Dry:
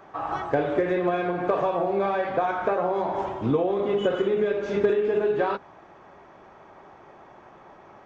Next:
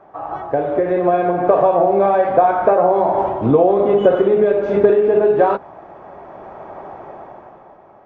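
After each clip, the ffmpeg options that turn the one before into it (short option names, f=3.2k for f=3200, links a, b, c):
-af "lowpass=f=1.2k:p=1,equalizer=f=670:t=o:w=0.9:g=7,dynaudnorm=f=130:g=13:m=13dB"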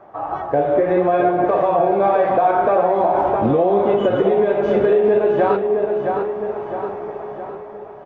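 -filter_complex "[0:a]aecho=1:1:663|1326|1989|2652|3315|3978:0.355|0.177|0.0887|0.0444|0.0222|0.0111,flanger=delay=8.3:depth=5.7:regen=56:speed=0.75:shape=sinusoidal,acrossover=split=1800[a][b];[a]alimiter=limit=-13.5dB:level=0:latency=1:release=156[c];[c][b]amix=inputs=2:normalize=0,volume=6dB"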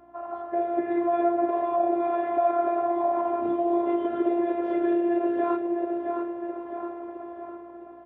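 -af "aeval=exprs='val(0)+0.0112*(sin(2*PI*60*n/s)+sin(2*PI*2*60*n/s)/2+sin(2*PI*3*60*n/s)/3+sin(2*PI*4*60*n/s)/4+sin(2*PI*5*60*n/s)/5)':c=same,afftfilt=real='hypot(re,im)*cos(PI*b)':imag='0':win_size=512:overlap=0.75,highpass=120,lowpass=2.7k,volume=-5.5dB"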